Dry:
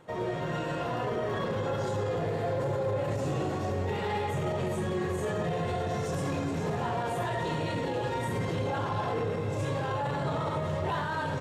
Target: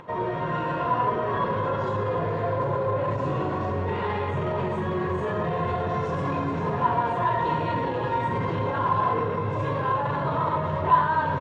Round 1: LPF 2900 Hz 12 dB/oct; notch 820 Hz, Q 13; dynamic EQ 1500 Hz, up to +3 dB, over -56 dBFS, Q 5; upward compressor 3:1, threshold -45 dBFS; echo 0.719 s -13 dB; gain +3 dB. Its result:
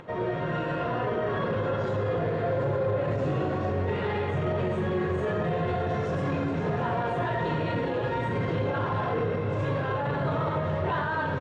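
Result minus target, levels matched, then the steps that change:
echo 0.228 s late; 1000 Hz band -5.0 dB
add after LPF: bell 1000 Hz +14.5 dB 0.21 oct; change: echo 0.491 s -13 dB

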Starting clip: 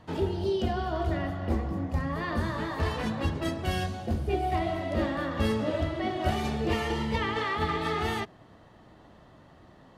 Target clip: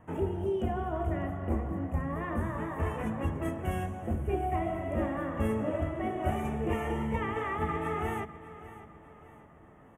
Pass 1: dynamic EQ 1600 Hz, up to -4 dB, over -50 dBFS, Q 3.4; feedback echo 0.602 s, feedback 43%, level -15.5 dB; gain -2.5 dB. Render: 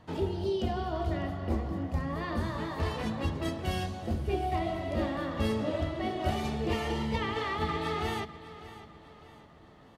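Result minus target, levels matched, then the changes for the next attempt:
4000 Hz band +12.5 dB
add after dynamic EQ: Butterworth band-stop 4400 Hz, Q 0.79

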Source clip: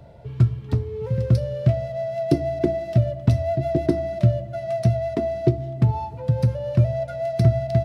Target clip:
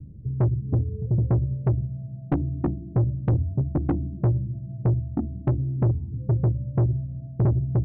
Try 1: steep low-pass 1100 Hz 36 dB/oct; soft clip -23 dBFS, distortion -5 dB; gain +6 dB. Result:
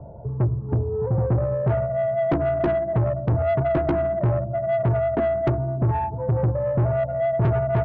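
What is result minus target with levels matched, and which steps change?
1000 Hz band +11.5 dB
change: steep low-pass 310 Hz 36 dB/oct

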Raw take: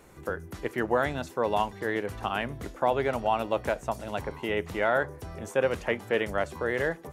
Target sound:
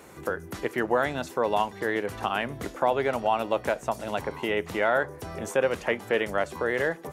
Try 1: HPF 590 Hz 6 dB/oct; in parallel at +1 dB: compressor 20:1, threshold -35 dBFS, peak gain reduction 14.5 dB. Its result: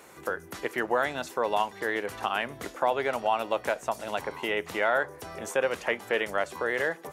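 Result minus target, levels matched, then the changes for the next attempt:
125 Hz band -6.5 dB
change: HPF 170 Hz 6 dB/oct

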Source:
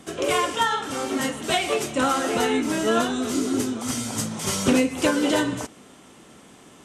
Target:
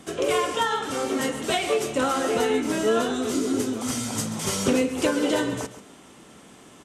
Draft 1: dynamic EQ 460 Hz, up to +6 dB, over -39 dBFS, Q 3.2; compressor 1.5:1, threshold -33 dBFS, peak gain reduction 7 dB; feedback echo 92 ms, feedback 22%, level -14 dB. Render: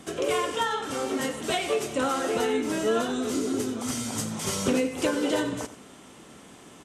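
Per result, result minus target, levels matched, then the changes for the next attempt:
echo 45 ms early; compressor: peak gain reduction +3 dB
change: feedback echo 0.137 s, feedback 22%, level -14 dB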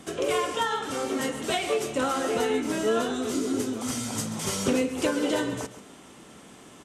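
compressor: peak gain reduction +3 dB
change: compressor 1.5:1, threshold -24.5 dBFS, peak gain reduction 4.5 dB

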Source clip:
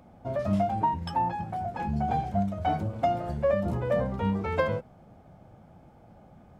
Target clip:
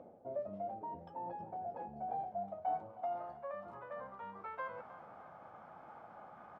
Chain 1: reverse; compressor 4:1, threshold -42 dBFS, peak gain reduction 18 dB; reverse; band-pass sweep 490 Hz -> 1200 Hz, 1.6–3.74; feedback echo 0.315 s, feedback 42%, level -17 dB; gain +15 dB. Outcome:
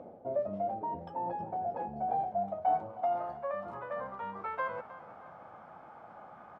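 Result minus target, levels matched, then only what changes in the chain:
compressor: peak gain reduction -8 dB
change: compressor 4:1, threshold -52.5 dBFS, peak gain reduction 25.5 dB

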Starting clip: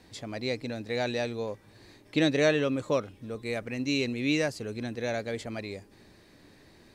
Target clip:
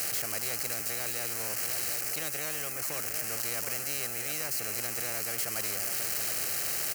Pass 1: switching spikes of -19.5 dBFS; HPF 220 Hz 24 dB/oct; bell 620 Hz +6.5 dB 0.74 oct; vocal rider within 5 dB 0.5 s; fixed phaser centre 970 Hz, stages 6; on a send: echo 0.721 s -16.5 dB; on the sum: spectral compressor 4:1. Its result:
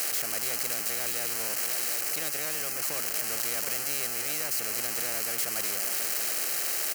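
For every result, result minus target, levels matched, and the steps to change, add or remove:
125 Hz band -7.0 dB; switching spikes: distortion +6 dB
change: HPF 100 Hz 24 dB/oct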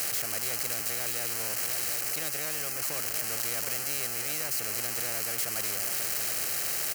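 switching spikes: distortion +6 dB
change: switching spikes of -26 dBFS

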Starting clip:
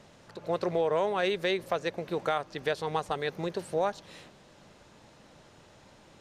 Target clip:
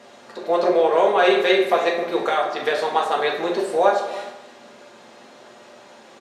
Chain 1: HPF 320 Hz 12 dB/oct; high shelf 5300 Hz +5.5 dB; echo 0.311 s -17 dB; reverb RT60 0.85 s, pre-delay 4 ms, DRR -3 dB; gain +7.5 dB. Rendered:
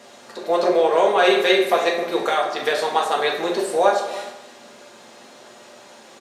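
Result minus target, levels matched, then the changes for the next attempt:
8000 Hz band +6.0 dB
change: high shelf 5300 Hz -4.5 dB

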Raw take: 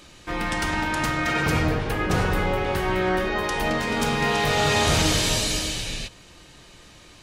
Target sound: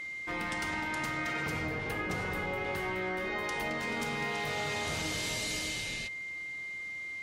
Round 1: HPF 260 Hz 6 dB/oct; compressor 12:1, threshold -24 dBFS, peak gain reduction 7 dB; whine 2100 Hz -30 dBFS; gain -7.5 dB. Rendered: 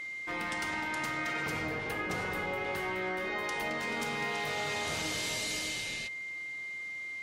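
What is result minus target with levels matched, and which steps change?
125 Hz band -3.5 dB
change: HPF 110 Hz 6 dB/oct

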